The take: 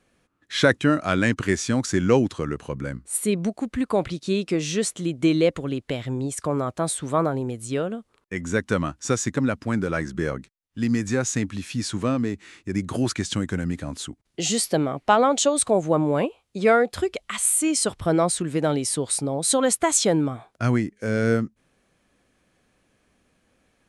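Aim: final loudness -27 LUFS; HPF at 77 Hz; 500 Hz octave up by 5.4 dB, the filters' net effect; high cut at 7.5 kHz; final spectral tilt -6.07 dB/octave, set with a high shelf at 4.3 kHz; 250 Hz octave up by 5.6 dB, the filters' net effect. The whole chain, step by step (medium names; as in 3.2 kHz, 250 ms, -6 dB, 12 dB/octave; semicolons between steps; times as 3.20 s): high-pass 77 Hz; low-pass 7.5 kHz; peaking EQ 250 Hz +5.5 dB; peaking EQ 500 Hz +5 dB; treble shelf 4.3 kHz -3.5 dB; trim -7 dB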